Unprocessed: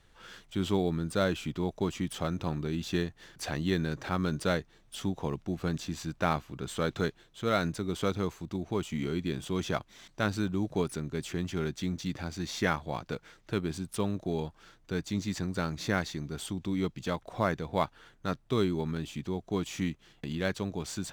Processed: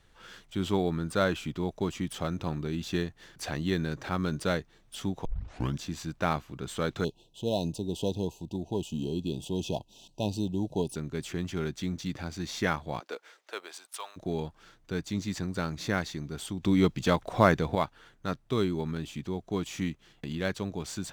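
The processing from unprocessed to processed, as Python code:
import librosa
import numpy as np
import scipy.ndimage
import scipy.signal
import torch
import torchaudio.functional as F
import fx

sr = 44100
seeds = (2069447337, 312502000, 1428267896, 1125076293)

y = fx.peak_eq(x, sr, hz=1200.0, db=4.0, octaves=1.8, at=(0.73, 1.39))
y = fx.brickwall_bandstop(y, sr, low_hz=1000.0, high_hz=2500.0, at=(7.04, 10.96))
y = fx.highpass(y, sr, hz=fx.line((12.99, 310.0), (14.16, 870.0)), slope=24, at=(12.99, 14.16), fade=0.02)
y = fx.edit(y, sr, fx.tape_start(start_s=5.25, length_s=0.55),
    fx.clip_gain(start_s=16.63, length_s=1.12, db=7.5), tone=tone)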